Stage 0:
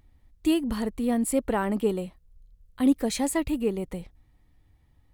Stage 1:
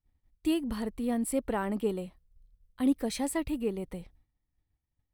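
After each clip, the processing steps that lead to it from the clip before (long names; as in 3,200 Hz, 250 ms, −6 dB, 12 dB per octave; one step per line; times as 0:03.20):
downward expander −49 dBFS
notch filter 6,900 Hz, Q 7.3
level −5 dB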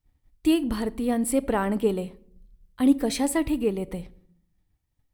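rectangular room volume 990 cubic metres, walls furnished, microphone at 0.41 metres
level +6.5 dB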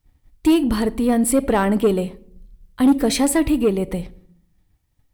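soft clipping −17 dBFS, distortion −14 dB
level +8.5 dB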